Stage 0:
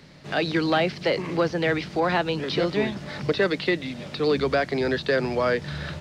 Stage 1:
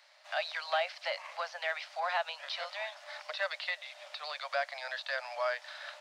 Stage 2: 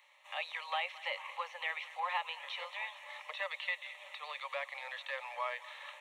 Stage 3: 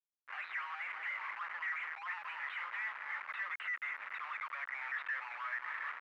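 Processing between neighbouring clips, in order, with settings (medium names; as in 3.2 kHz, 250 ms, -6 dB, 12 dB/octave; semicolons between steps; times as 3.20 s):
steep high-pass 580 Hz 96 dB/octave; trim -7.5 dB
static phaser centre 1 kHz, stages 8; thinning echo 218 ms, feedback 82%, high-pass 650 Hz, level -17.5 dB; trim +1 dB
resonances exaggerated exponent 1.5; Schmitt trigger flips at -48 dBFS; Butterworth band-pass 1.6 kHz, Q 1.8; trim +7.5 dB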